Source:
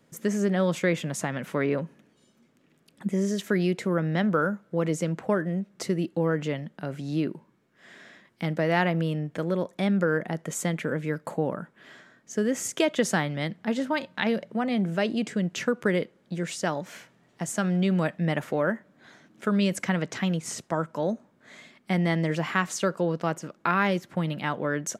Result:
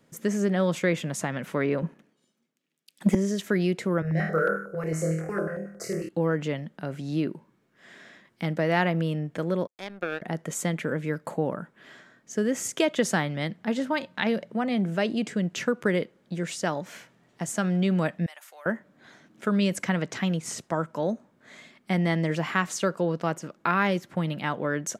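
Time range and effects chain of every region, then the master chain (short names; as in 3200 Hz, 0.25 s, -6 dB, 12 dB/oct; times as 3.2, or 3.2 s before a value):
1.82–3.15 HPF 140 Hz 24 dB/oct + sample leveller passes 1 + three-band expander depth 70%
4.02–6.09 fixed phaser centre 920 Hz, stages 6 + flutter echo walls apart 4.3 m, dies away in 0.64 s + stepped notch 11 Hz 310–3700 Hz
9.67–10.22 Bessel high-pass 340 Hz + power-law curve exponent 2
18.26–18.66 differentiator + compressor 2.5:1, threshold -44 dBFS + resonant high-pass 720 Hz, resonance Q 1.6
whole clip: dry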